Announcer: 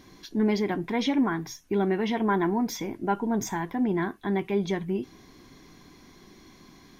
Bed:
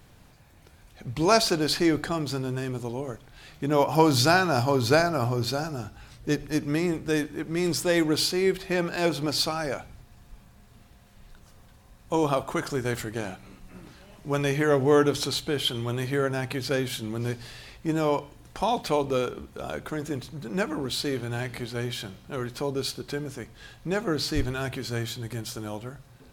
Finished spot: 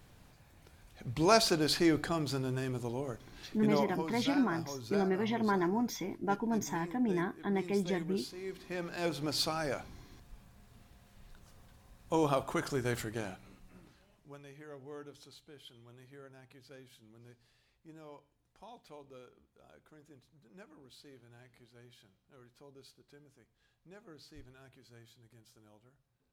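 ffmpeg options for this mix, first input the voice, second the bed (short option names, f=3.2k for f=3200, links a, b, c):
-filter_complex "[0:a]adelay=3200,volume=-6dB[a];[1:a]volume=9.5dB,afade=t=out:st=3.58:d=0.4:silence=0.177828,afade=t=in:st=8.42:d=1.2:silence=0.188365,afade=t=out:st=13:d=1.39:silence=0.0794328[b];[a][b]amix=inputs=2:normalize=0"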